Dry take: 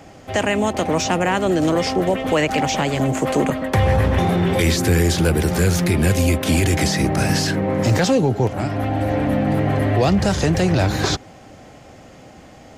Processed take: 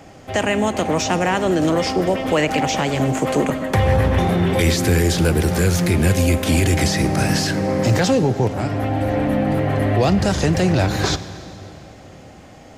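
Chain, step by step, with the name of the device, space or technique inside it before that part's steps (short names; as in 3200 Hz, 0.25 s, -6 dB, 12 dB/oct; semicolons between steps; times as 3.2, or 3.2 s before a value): saturated reverb return (on a send at -12 dB: reverb RT60 2.7 s, pre-delay 28 ms + soft clip -9.5 dBFS, distortion -19 dB)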